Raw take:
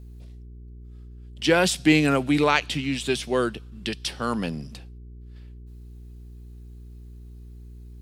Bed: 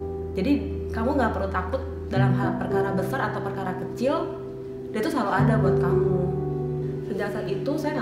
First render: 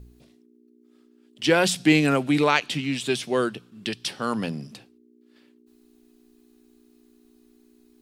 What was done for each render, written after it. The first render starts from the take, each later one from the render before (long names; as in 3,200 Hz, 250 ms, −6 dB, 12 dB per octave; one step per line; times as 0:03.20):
hum removal 60 Hz, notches 3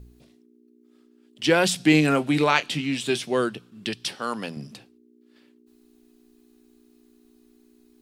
0:01.91–0:03.23: double-tracking delay 26 ms −12 dB
0:04.15–0:04.57: high-pass filter 410 Hz 6 dB per octave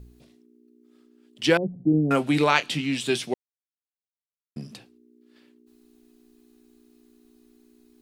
0:01.57–0:02.11: Gaussian smoothing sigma 18 samples
0:03.34–0:04.56: silence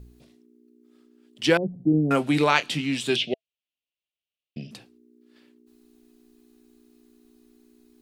0:03.16–0:04.71: drawn EQ curve 450 Hz 0 dB, 660 Hz +4 dB, 1,000 Hz −29 dB, 2,800 Hz +15 dB, 11,000 Hz −25 dB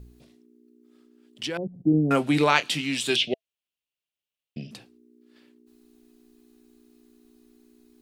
0:01.43–0:01.85: output level in coarse steps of 15 dB
0:02.66–0:03.28: spectral tilt +1.5 dB per octave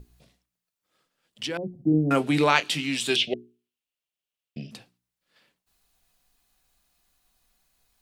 mains-hum notches 60/120/180/240/300/360/420 Hz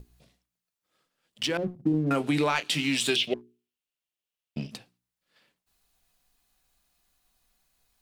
leveller curve on the samples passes 1
downward compressor 4 to 1, threshold −23 dBFS, peak gain reduction 9.5 dB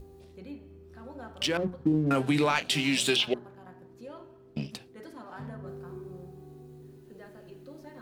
mix in bed −21 dB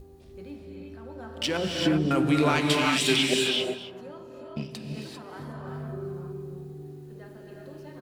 single-tap delay 268 ms −15.5 dB
reverb whose tail is shaped and stops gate 420 ms rising, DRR −0.5 dB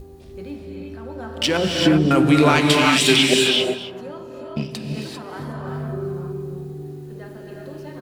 level +8 dB
brickwall limiter −3 dBFS, peak gain reduction 1.5 dB